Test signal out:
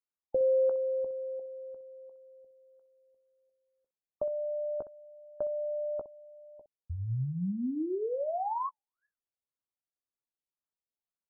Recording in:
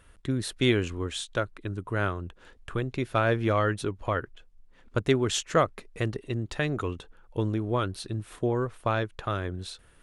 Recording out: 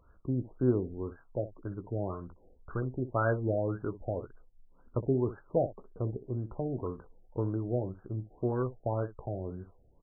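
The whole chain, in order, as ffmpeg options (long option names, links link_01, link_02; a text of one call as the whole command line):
ffmpeg -i in.wav -af "aecho=1:1:16|63:0.316|0.2,afftfilt=real='re*lt(b*sr/1024,800*pow(1700/800,0.5+0.5*sin(2*PI*1.9*pts/sr)))':imag='im*lt(b*sr/1024,800*pow(1700/800,0.5+0.5*sin(2*PI*1.9*pts/sr)))':win_size=1024:overlap=0.75,volume=-4.5dB" out.wav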